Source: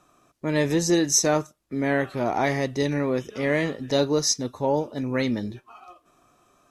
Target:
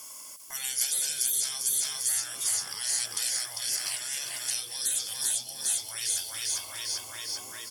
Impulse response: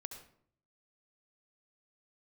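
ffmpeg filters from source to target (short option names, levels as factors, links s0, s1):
-filter_complex "[0:a]asetrate=38367,aresample=44100,asplit=2[s0][s1];[s1]aecho=0:1:398|796|1194|1592|1990|2388|2786:0.422|0.228|0.123|0.0664|0.0359|0.0194|0.0105[s2];[s0][s2]amix=inputs=2:normalize=0,acrossover=split=320[s3][s4];[s4]acompressor=threshold=0.0355:ratio=6[s5];[s3][s5]amix=inputs=2:normalize=0,aemphasis=mode=production:type=bsi,bandreject=f=3900:w=8.4,acrossover=split=3600[s6][s7];[s6]acompressor=threshold=0.01:ratio=12[s8];[s8][s7]amix=inputs=2:normalize=0,afftfilt=real='re*lt(hypot(re,im),0.0178)':imag='im*lt(hypot(re,im),0.0178)':win_size=1024:overlap=0.75,crystalizer=i=8.5:c=0"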